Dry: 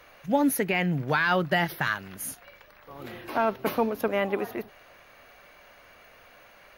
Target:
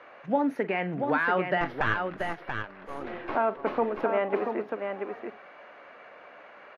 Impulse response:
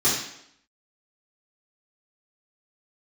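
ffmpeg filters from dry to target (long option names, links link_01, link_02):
-filter_complex "[0:a]acompressor=threshold=-37dB:ratio=1.5,highpass=270,asettb=1/sr,asplit=3[link_01][link_02][link_03];[link_01]atrim=end=1.614[link_04];[link_02]atrim=start=1.61:end=3.35,asetpts=PTS-STARTPTS,afade=type=in:duration=0.004:curve=qsin,afade=type=out:start_time=1.736:duration=0.004:curve=qsin,aeval=exprs='0.133*(cos(1*acos(clip(val(0)/0.133,-1,1)))-cos(1*PI/2))+0.0266*(cos(6*acos(clip(val(0)/0.133,-1,1)))-cos(6*PI/2))':channel_layout=same[link_05];[link_03]atrim=start=3.346[link_06];[link_04][link_05]acrossfade=duration=0.004:curve1=hsin:curve2=qsin[link_07];[link_07][link_06]acrossfade=duration=0.004:curve1=qsin:curve2=hsin,lowpass=1800,aecho=1:1:43|684:0.178|0.531,volume=5.5dB"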